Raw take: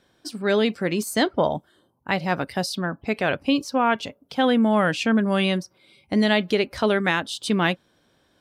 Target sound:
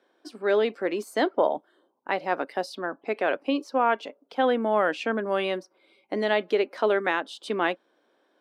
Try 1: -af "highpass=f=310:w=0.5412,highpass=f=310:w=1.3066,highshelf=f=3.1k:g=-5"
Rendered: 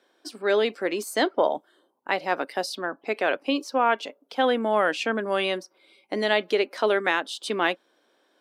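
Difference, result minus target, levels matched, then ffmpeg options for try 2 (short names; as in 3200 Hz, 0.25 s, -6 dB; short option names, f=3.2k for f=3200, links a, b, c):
8000 Hz band +8.0 dB
-af "highpass=f=310:w=0.5412,highpass=f=310:w=1.3066,highshelf=f=3.1k:g=-16"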